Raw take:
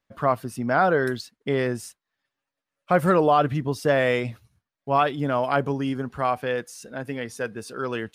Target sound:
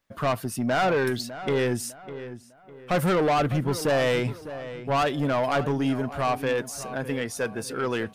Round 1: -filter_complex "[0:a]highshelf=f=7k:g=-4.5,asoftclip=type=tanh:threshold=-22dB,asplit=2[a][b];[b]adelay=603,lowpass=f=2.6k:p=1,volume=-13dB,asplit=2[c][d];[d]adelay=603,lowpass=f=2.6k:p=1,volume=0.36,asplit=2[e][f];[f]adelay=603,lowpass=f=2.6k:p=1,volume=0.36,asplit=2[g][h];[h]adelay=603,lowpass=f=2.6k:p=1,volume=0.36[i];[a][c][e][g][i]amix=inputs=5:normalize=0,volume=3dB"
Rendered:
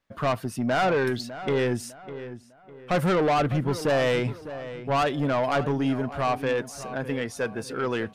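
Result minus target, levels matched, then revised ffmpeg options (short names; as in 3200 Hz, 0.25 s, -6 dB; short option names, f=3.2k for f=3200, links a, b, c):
8000 Hz band -5.0 dB
-filter_complex "[0:a]highshelf=f=7k:g=5.5,asoftclip=type=tanh:threshold=-22dB,asplit=2[a][b];[b]adelay=603,lowpass=f=2.6k:p=1,volume=-13dB,asplit=2[c][d];[d]adelay=603,lowpass=f=2.6k:p=1,volume=0.36,asplit=2[e][f];[f]adelay=603,lowpass=f=2.6k:p=1,volume=0.36,asplit=2[g][h];[h]adelay=603,lowpass=f=2.6k:p=1,volume=0.36[i];[a][c][e][g][i]amix=inputs=5:normalize=0,volume=3dB"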